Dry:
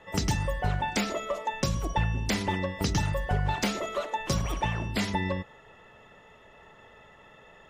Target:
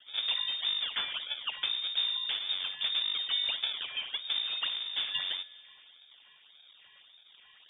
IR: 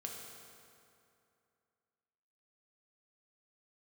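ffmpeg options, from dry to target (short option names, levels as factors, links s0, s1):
-filter_complex "[0:a]acrusher=samples=29:mix=1:aa=0.000001:lfo=1:lforange=46.4:lforate=1.7,asplit=2[s0][s1];[1:a]atrim=start_sample=2205[s2];[s1][s2]afir=irnorm=-1:irlink=0,volume=0.237[s3];[s0][s3]amix=inputs=2:normalize=0,lowpass=f=3100:t=q:w=0.5098,lowpass=f=3100:t=q:w=0.6013,lowpass=f=3100:t=q:w=0.9,lowpass=f=3100:t=q:w=2.563,afreqshift=-3700,volume=0.501"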